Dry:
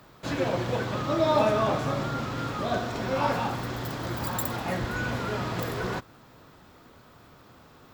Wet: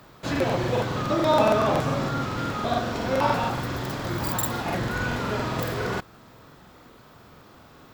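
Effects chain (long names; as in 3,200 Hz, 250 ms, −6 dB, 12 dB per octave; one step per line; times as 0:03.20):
regular buffer underruns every 0.14 s, samples 2,048, repeat, from 0:00.31
level +3 dB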